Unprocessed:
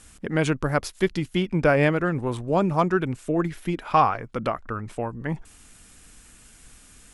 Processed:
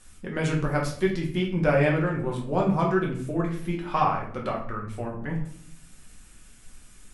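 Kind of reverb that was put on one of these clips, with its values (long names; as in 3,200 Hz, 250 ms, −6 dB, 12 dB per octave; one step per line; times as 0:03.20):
rectangular room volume 80 cubic metres, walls mixed, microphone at 1 metre
level −7 dB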